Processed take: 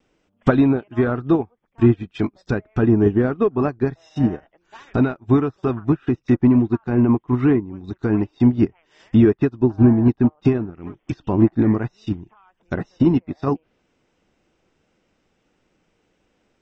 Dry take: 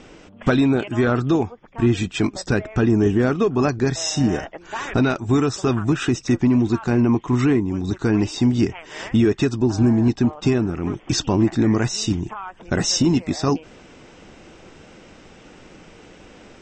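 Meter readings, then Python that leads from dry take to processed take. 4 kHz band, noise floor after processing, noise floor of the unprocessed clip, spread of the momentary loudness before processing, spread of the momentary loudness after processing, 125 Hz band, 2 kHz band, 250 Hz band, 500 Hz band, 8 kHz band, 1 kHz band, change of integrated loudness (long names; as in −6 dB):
below −15 dB, −68 dBFS, −47 dBFS, 7 LU, 12 LU, +0.5 dB, −5.0 dB, +1.0 dB, +0.5 dB, below −30 dB, −2.0 dB, +0.5 dB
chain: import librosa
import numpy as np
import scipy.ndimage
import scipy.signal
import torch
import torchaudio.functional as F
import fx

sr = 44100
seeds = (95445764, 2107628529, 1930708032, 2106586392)

y = fx.env_lowpass_down(x, sr, base_hz=1500.0, full_db=-17.5)
y = fx.dynamic_eq(y, sr, hz=4000.0, q=1.1, threshold_db=-47.0, ratio=4.0, max_db=5)
y = fx.vibrato(y, sr, rate_hz=0.32, depth_cents=8.7)
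y = fx.upward_expand(y, sr, threshold_db=-31.0, expansion=2.5)
y = y * librosa.db_to_amplitude(5.0)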